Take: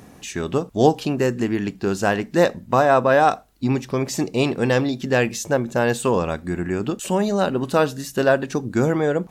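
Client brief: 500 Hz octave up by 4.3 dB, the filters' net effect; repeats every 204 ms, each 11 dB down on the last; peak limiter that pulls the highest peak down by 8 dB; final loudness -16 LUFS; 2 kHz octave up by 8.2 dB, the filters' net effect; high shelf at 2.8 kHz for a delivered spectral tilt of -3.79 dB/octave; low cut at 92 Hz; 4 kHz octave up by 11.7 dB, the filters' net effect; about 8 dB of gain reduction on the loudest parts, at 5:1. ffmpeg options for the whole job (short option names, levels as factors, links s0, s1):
-af "highpass=92,equalizer=f=500:t=o:g=4.5,equalizer=f=2000:t=o:g=7,highshelf=f=2800:g=5,equalizer=f=4000:t=o:g=8.5,acompressor=threshold=0.178:ratio=5,alimiter=limit=0.316:level=0:latency=1,aecho=1:1:204|408|612:0.282|0.0789|0.0221,volume=2"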